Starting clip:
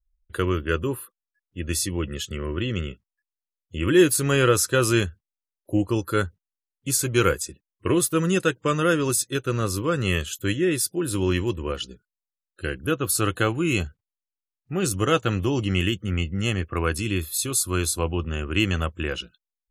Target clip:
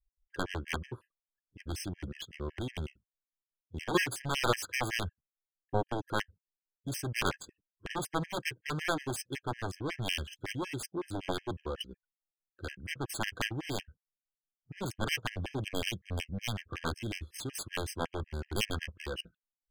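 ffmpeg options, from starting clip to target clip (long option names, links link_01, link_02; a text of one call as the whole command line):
ffmpeg -i in.wav -af "adynamicsmooth=sensitivity=4.5:basefreq=1400,aeval=exprs='0.531*(cos(1*acos(clip(val(0)/0.531,-1,1)))-cos(1*PI/2))+0.188*(cos(7*acos(clip(val(0)/0.531,-1,1)))-cos(7*PI/2))':channel_layout=same,afftfilt=real='re*gt(sin(2*PI*5.4*pts/sr)*(1-2*mod(floor(b*sr/1024/1600),2)),0)':imag='im*gt(sin(2*PI*5.4*pts/sr)*(1-2*mod(floor(b*sr/1024/1600),2)),0)':win_size=1024:overlap=0.75,volume=-8.5dB" out.wav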